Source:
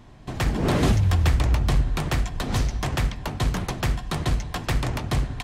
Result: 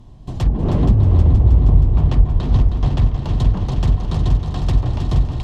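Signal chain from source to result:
low-shelf EQ 190 Hz +12 dB
treble cut that deepens with the level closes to 700 Hz, closed at −6 dBFS
flat-topped bell 1,800 Hz −8.5 dB 1.1 octaves
on a send: echo machine with several playback heads 158 ms, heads second and third, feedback 69%, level −7.5 dB
on the sum: level −2.5 dB

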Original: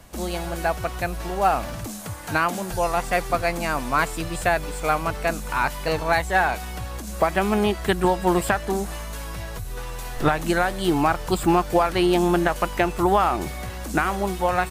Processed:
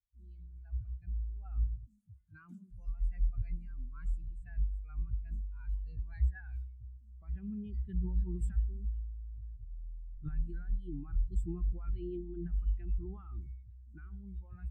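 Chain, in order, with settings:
transient designer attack −1 dB, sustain +8 dB
guitar amp tone stack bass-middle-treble 6-0-2
on a send at −13.5 dB: convolution reverb RT60 0.60 s, pre-delay 94 ms
on the sum: every bin expanded away from the loudest bin 2.5 to 1
level +3.5 dB

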